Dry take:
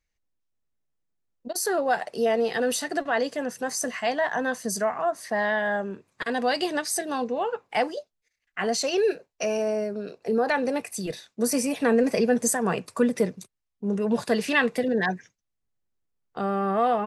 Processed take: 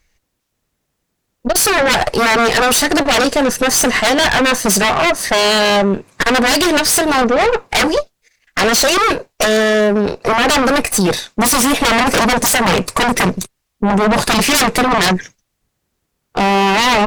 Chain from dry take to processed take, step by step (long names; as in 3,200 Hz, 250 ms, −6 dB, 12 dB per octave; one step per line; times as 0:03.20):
sine wavefolder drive 16 dB, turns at −9.5 dBFS
harmonic generator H 4 −14 dB, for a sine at −6.5 dBFS